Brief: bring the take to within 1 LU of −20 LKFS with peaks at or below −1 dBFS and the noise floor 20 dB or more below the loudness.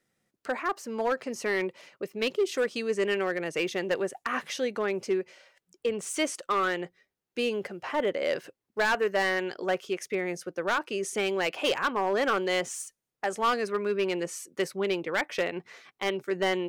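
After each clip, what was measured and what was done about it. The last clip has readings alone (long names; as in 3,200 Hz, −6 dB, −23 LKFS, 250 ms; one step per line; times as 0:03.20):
share of clipped samples 1.2%; peaks flattened at −20.0 dBFS; integrated loudness −29.5 LKFS; sample peak −20.0 dBFS; target loudness −20.0 LKFS
→ clipped peaks rebuilt −20 dBFS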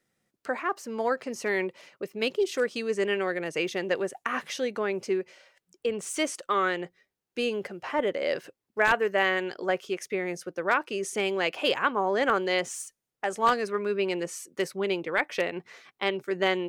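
share of clipped samples 0.0%; integrated loudness −28.5 LKFS; sample peak −11.0 dBFS; target loudness −20.0 LKFS
→ level +8.5 dB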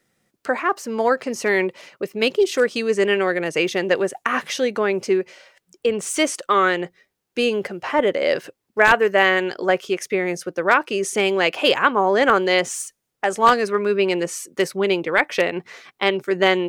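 integrated loudness −20.0 LKFS; sample peak −2.5 dBFS; background noise floor −78 dBFS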